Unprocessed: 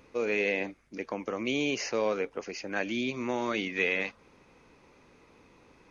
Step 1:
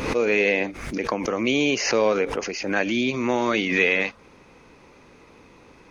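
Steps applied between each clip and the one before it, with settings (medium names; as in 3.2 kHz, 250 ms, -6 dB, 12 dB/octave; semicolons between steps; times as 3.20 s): swell ahead of each attack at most 58 dB/s; trim +8 dB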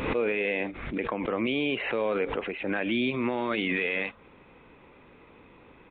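peak limiter -15 dBFS, peak gain reduction 8 dB; resampled via 8 kHz; trim -3 dB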